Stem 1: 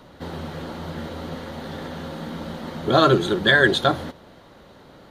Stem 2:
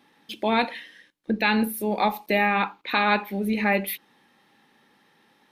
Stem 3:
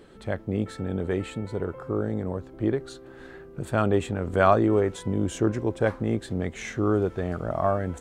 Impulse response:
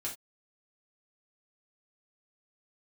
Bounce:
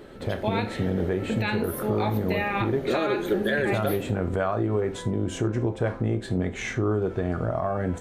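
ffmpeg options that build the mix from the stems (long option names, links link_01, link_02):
-filter_complex "[0:a]equalizer=frequency=125:width_type=o:width=1:gain=-9,equalizer=frequency=500:width_type=o:width=1:gain=6,equalizer=frequency=1000:width_type=o:width=1:gain=-11,equalizer=frequency=4000:width_type=o:width=1:gain=-11,equalizer=frequency=8000:width_type=o:width=1:gain=-3,volume=-2.5dB[link_01];[1:a]volume=-6dB,asplit=2[link_02][link_03];[link_03]volume=-5dB[link_04];[2:a]highshelf=frequency=5400:gain=-7,acompressor=threshold=-25dB:ratio=3,volume=2dB,asplit=2[link_05][link_06];[link_06]volume=-4dB[link_07];[3:a]atrim=start_sample=2205[link_08];[link_04][link_07]amix=inputs=2:normalize=0[link_09];[link_09][link_08]afir=irnorm=-1:irlink=0[link_10];[link_01][link_02][link_05][link_10]amix=inputs=4:normalize=0,alimiter=limit=-15dB:level=0:latency=1:release=154"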